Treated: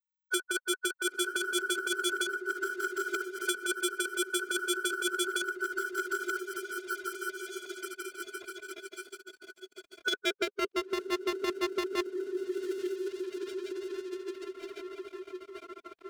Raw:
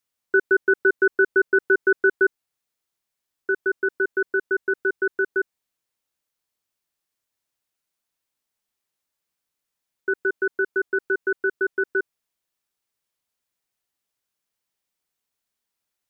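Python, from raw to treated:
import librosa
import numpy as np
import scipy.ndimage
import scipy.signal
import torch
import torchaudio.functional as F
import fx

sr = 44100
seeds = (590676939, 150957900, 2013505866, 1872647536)

p1 = fx.over_compress(x, sr, threshold_db=-20.0, ratio=-0.5)
p2 = x + (p1 * 10.0 ** (-0.5 / 20.0))
p3 = fx.low_shelf(p2, sr, hz=260.0, db=4.0)
p4 = p3 + fx.echo_diffused(p3, sr, ms=936, feedback_pct=47, wet_db=-12.0, dry=0)
p5 = fx.filter_sweep_bandpass(p4, sr, from_hz=1500.0, to_hz=420.0, start_s=9.71, end_s=10.96, q=0.98)
p6 = np.clip(10.0 ** (24.0 / 20.0) * p5, -1.0, 1.0) / 10.0 ** (24.0 / 20.0)
p7 = p6 * (1.0 - 0.63 / 2.0 + 0.63 / 2.0 * np.cos(2.0 * np.pi * 14.0 * (np.arange(len(p6)) / sr)))
p8 = np.sign(p7) * np.maximum(np.abs(p7) - 10.0 ** (-56.0 / 20.0), 0.0)
p9 = fx.peak_eq(p8, sr, hz=370.0, db=3.0, octaves=1.6)
p10 = fx.pitch_keep_formants(p9, sr, semitones=-1.5)
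y = fx.band_squash(p10, sr, depth_pct=70)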